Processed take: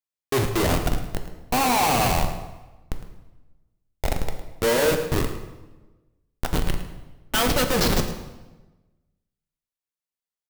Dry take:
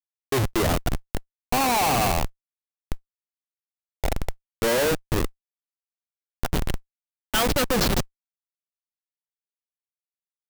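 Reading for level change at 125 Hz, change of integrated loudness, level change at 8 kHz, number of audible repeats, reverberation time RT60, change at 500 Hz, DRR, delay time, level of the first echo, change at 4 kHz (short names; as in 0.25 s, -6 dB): +1.5 dB, +1.0 dB, +1.0 dB, 1, 1.2 s, +1.5 dB, 5.0 dB, 0.108 s, -14.0 dB, +1.0 dB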